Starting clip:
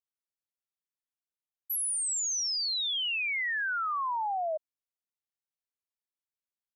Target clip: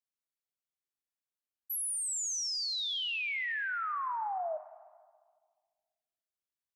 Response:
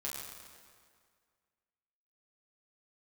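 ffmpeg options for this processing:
-filter_complex "[0:a]asplit=2[link_01][link_02];[1:a]atrim=start_sample=2205,asetrate=48510,aresample=44100,adelay=26[link_03];[link_02][link_03]afir=irnorm=-1:irlink=0,volume=-11.5dB[link_04];[link_01][link_04]amix=inputs=2:normalize=0,volume=-4dB"

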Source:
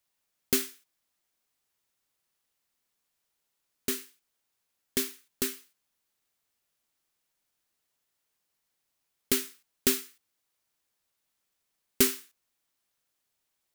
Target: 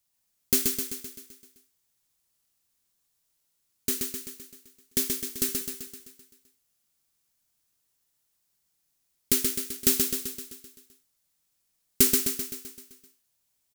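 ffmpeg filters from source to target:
ffmpeg -i in.wav -af "bass=frequency=250:gain=8,treble=frequency=4000:gain=8,aecho=1:1:129|258|387|516|645|774|903|1032:0.631|0.36|0.205|0.117|0.0666|0.038|0.0216|0.0123,volume=-3.5dB" out.wav

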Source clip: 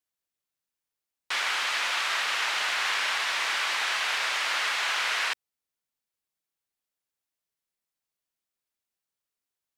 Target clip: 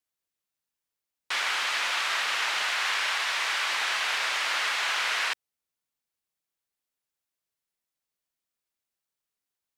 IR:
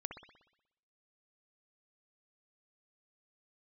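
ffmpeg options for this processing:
-filter_complex "[0:a]asettb=1/sr,asplit=3[link_01][link_02][link_03];[link_01]atrim=end=2.634[link_04];[link_02]atrim=start=2.63:end=3.7,asetpts=PTS-STARTPTS,afade=type=in:duration=0.004:curve=qsin,afade=type=out:start_time=1.066:duration=0.004:curve=qsin,highpass=frequency=280:poles=1[link_05];[link_03]atrim=start=3.696[link_06];[link_04][link_05]acrossfade=duration=0.004:curve1=hsin:curve2=qsin[link_07];[link_07][link_06]acrossfade=duration=0.004:curve1=qsin:curve2=hsin"

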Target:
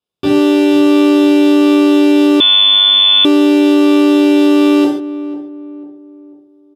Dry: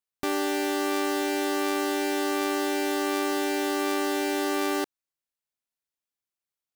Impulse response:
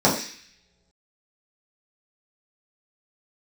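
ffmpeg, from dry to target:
-filter_complex "[0:a]asplit=2[link_01][link_02];[link_02]adelay=494,lowpass=frequency=930:poles=1,volume=-13dB,asplit=2[link_03][link_04];[link_04]adelay=494,lowpass=frequency=930:poles=1,volume=0.44,asplit=2[link_05][link_06];[link_06]adelay=494,lowpass=frequency=930:poles=1,volume=0.44,asplit=2[link_07][link_08];[link_08]adelay=494,lowpass=frequency=930:poles=1,volume=0.44[link_09];[link_01][link_03][link_05][link_07][link_09]amix=inputs=5:normalize=0[link_10];[1:a]atrim=start_sample=2205,afade=type=out:start_time=0.15:duration=0.01,atrim=end_sample=7056,asetrate=28224,aresample=44100[link_11];[link_10][link_11]afir=irnorm=-1:irlink=0,asettb=1/sr,asplit=3[link_12][link_13][link_14];[link_12]atrim=end=2.404[link_15];[link_13]atrim=start=2.4:end=3.25,asetpts=PTS-STARTPTS,afade=type=in:duration=0.004:curve=qsin,afade=type=out:start_time=0.846:duration=0.004:curve=qsin,lowpass=frequency=3200:width_type=q:width=0.5098,lowpass=frequency=3200:width_type=q:width=0.6013,lowpass=frequency=3200:width_type=q:width=0.9,lowpass=frequency=3200:width_type=q:width=2.563,afreqshift=-3800[link_16];[link_14]atrim=start=3.246[link_17];[link_15][link_16]acrossfade=duration=0.004:curve1=hsin:curve2=qsin[link_18];[link_18][link_17]acrossfade=duration=0.004:curve1=qsin:curve2=hsin,volume=-9.5dB"

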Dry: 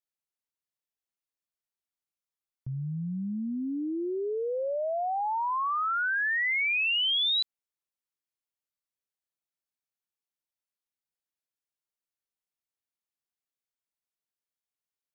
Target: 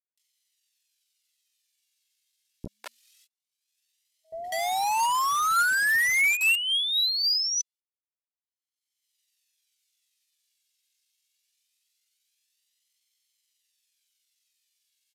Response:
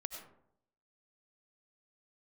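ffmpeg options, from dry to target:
-filter_complex "[0:a]afftfilt=real='re*(1-between(b*sr/4096,160,420))':imag='im*(1-between(b*sr/4096,160,420))':win_size=4096:overlap=0.75,agate=range=-38dB:threshold=-52dB:ratio=16:detection=peak,lowshelf=frequency=160:gain=9.5,flanger=delay=1.4:depth=1.4:regen=35:speed=0.23:shape=sinusoidal,asplit=2[link_01][link_02];[link_02]highpass=frequency=720:poles=1,volume=9dB,asoftclip=type=tanh:threshold=-23dB[link_03];[link_01][link_03]amix=inputs=2:normalize=0,lowpass=frequency=2900:poles=1,volume=-6dB,asetrate=66075,aresample=44100,atempo=0.66742,acrossover=split=2500[link_04][link_05];[link_04]acrusher=bits=5:mix=0:aa=0.000001[link_06];[link_05]acompressor=mode=upward:threshold=-40dB:ratio=2.5[link_07];[link_06][link_07]amix=inputs=2:normalize=0,acrossover=split=580[link_08][link_09];[link_09]adelay=200[link_10];[link_08][link_10]amix=inputs=2:normalize=0,aresample=32000,aresample=44100,volume=7dB"

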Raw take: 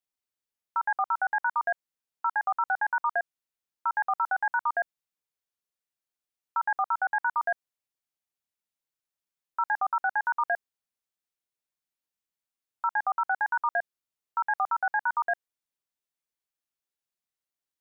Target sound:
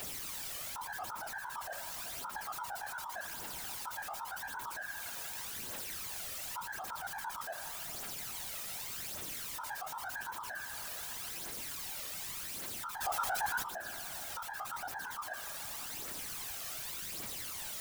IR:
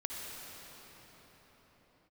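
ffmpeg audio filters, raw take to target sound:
-filter_complex "[0:a]aeval=exprs='val(0)+0.5*0.015*sgn(val(0))':channel_layout=same,aphaser=in_gain=1:out_gain=1:delay=1.7:decay=0.54:speed=0.87:type=triangular,dynaudnorm=framelen=480:gausssize=3:maxgain=9dB,bandreject=frequency=324.1:width_type=h:width=4,bandreject=frequency=648.2:width_type=h:width=4,bandreject=frequency=972.3:width_type=h:width=4,bandreject=frequency=1296.4:width_type=h:width=4,bandreject=frequency=1620.5:width_type=h:width=4,bandreject=frequency=1944.6:width_type=h:width=4,bandreject=frequency=2268.7:width_type=h:width=4,bandreject=frequency=2592.8:width_type=h:width=4,bandreject=frequency=2916.9:width_type=h:width=4,bandreject=frequency=3241:width_type=h:width=4,bandreject=frequency=3565.1:width_type=h:width=4,bandreject=frequency=3889.2:width_type=h:width=4,bandreject=frequency=4213.3:width_type=h:width=4,bandreject=frequency=4537.4:width_type=h:width=4,bandreject=frequency=4861.5:width_type=h:width=4,bandreject=frequency=5185.6:width_type=h:width=4,bandreject=frequency=5509.7:width_type=h:width=4,bandreject=frequency=5833.8:width_type=h:width=4,bandreject=frequency=6157.9:width_type=h:width=4,asplit=2[link_01][link_02];[1:a]atrim=start_sample=2205,asetrate=52920,aresample=44100[link_03];[link_02][link_03]afir=irnorm=-1:irlink=0,volume=-22dB[link_04];[link_01][link_04]amix=inputs=2:normalize=0,alimiter=level_in=15dB:limit=-24dB:level=0:latency=1:release=32,volume=-15dB,asettb=1/sr,asplit=3[link_05][link_06][link_07];[link_05]atrim=end=13.014[link_08];[link_06]atrim=start=13.01:end=13.63,asetpts=PTS-STARTPTS,afade=type=in:duration=0.004:curve=qsin,afade=type=out:start_time=0.616:duration=0.004:curve=qsin,acontrast=77[link_09];[link_07]atrim=start=13.626[link_10];[link_08][link_09]acrossfade=duration=0.004:curve1=hsin:curve2=qsin[link_11];[link_11][link_10]acrossfade=duration=0.004:curve1=qsin:curve2=hsin,afftfilt=real='hypot(re,im)*cos(2*PI*random(0))':imag='hypot(re,im)*sin(2*PI*random(1))':win_size=512:overlap=0.75,volume=10dB"

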